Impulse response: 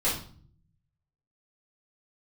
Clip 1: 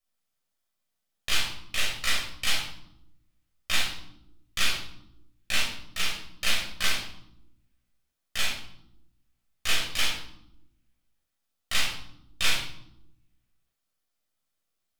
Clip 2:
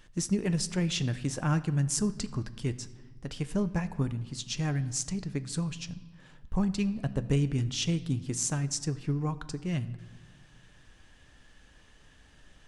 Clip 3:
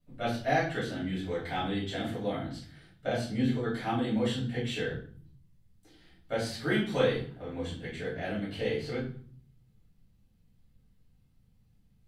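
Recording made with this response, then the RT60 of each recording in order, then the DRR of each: 3; 0.85, 1.6, 0.45 seconds; −4.5, 11.0, −9.5 decibels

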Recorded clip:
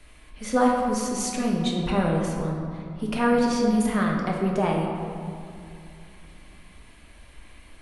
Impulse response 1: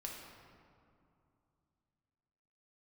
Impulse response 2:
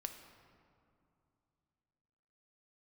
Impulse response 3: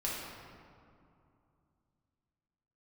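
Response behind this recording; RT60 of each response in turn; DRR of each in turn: 1; 2.6, 2.7, 2.6 seconds; −1.5, 5.5, −6.0 decibels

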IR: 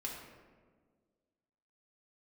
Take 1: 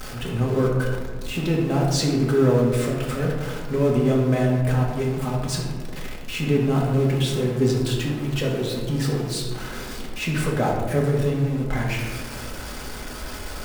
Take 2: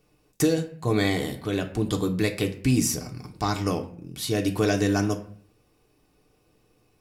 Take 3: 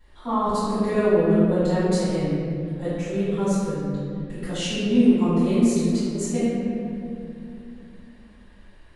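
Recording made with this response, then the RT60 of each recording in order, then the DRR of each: 1; 1.6, 0.55, 2.5 seconds; −3.0, 3.0, −18.5 decibels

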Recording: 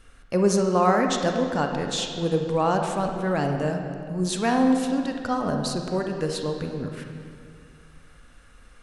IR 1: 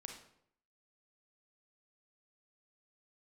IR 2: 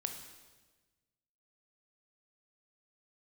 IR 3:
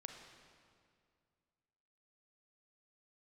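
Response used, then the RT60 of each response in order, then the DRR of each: 3; 0.70, 1.3, 2.2 seconds; 2.5, 4.5, 3.5 decibels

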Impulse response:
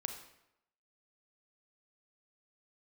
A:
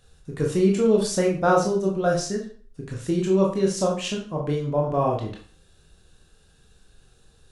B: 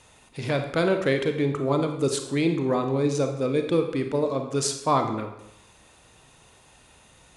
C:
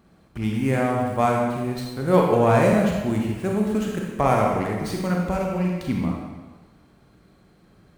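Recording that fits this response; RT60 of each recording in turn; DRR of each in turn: B; 0.45, 0.85, 1.3 seconds; −1.0, 5.5, −1.0 decibels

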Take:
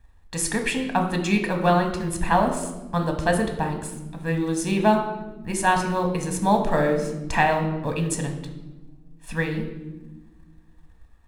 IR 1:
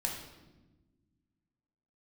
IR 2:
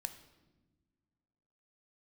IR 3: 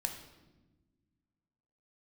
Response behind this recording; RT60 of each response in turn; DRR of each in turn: 3; 1.2 s, non-exponential decay, 1.2 s; −0.5, 8.5, 4.0 decibels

